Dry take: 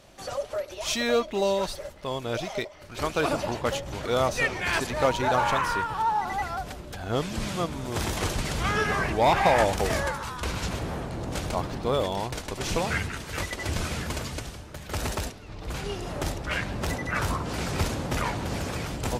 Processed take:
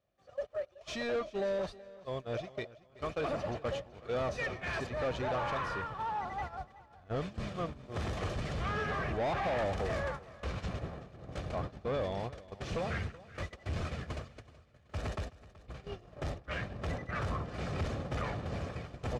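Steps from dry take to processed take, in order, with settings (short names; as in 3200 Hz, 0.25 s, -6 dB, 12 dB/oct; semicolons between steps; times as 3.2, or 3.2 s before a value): gate -30 dBFS, range -21 dB; HPF 53 Hz; notch 960 Hz, Q 12; comb 1.7 ms, depth 31%; in parallel at -11 dB: companded quantiser 4-bit; on the sum: soft clip -22.5 dBFS, distortion -9 dB; tape spacing loss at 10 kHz 20 dB; on a send: feedback echo 0.377 s, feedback 32%, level -19 dB; on the sum: gain -5.5 dB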